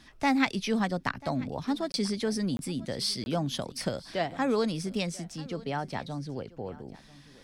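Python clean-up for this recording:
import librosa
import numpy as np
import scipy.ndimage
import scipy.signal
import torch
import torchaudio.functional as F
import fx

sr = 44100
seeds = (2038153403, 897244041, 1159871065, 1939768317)

y = fx.fix_interpolate(x, sr, at_s=(1.92, 2.57, 3.24), length_ms=21.0)
y = fx.fix_echo_inverse(y, sr, delay_ms=989, level_db=-20.5)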